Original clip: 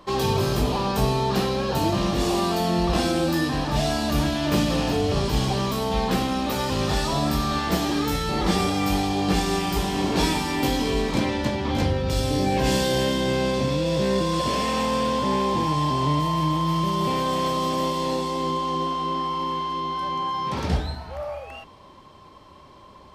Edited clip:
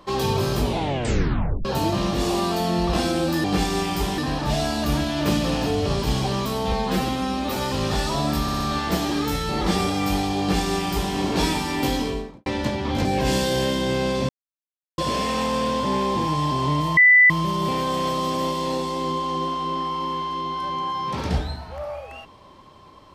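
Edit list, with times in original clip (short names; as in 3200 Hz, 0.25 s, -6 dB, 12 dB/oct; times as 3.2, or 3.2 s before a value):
0.62 tape stop 1.03 s
5.98–6.54 stretch 1.5×
7.4 stutter 0.06 s, 4 plays
9.2–9.94 copy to 3.44
10.74–11.26 studio fade out
11.85–12.44 cut
13.68–14.37 mute
16.36–16.69 bleep 1990 Hz -9.5 dBFS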